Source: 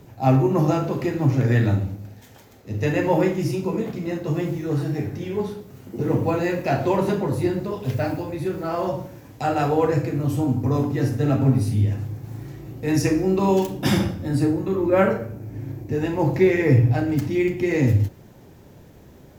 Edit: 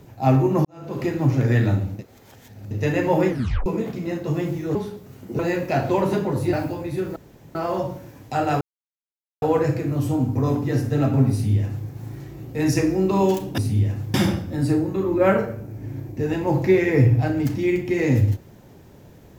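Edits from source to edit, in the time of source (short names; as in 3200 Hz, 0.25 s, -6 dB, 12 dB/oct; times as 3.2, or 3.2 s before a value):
0.65–1.01 fade in quadratic
1.99–2.71 reverse
3.29 tape stop 0.37 s
4.75–5.39 cut
6.03–6.35 cut
7.49–8.01 cut
8.64 insert room tone 0.39 s
9.7 insert silence 0.81 s
11.6–12.16 copy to 13.86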